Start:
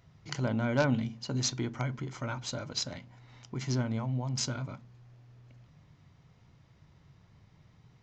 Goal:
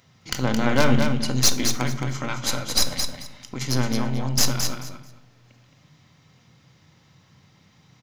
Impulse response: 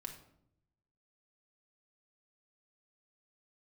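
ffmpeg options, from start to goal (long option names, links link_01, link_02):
-filter_complex "[0:a]highpass=120,highshelf=frequency=2200:gain=9.5,aeval=exprs='0.376*(cos(1*acos(clip(val(0)/0.376,-1,1)))-cos(1*PI/2))+0.0531*(cos(8*acos(clip(val(0)/0.376,-1,1)))-cos(8*PI/2))':channel_layout=same,aecho=1:1:219|438|657:0.501|0.0952|0.0181,asplit=2[link_01][link_02];[1:a]atrim=start_sample=2205[link_03];[link_02][link_03]afir=irnorm=-1:irlink=0,volume=5.5dB[link_04];[link_01][link_04]amix=inputs=2:normalize=0,volume=-2.5dB"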